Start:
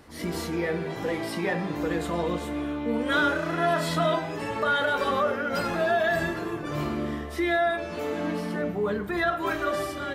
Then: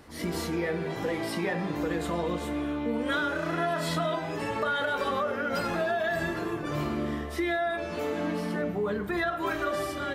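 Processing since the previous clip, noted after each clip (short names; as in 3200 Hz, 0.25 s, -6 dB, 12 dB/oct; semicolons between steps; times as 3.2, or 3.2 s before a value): compressor, threshold -25 dBFS, peak gain reduction 6.5 dB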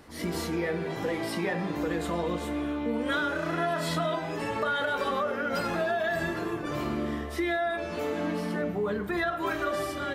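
notches 50/100/150 Hz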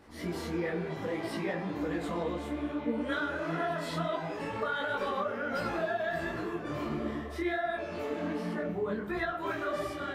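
high shelf 4900 Hz -7 dB; detuned doubles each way 49 cents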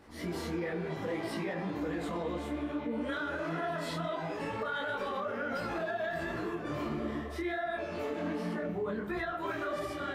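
limiter -26.5 dBFS, peak gain reduction 5.5 dB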